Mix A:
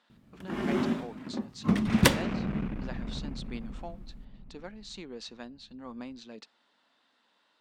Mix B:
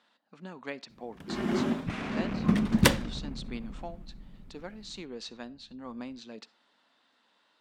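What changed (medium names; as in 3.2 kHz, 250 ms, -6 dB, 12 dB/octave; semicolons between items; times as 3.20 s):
speech: send +11.5 dB; first sound: entry +0.80 s; second sound: send -6.0 dB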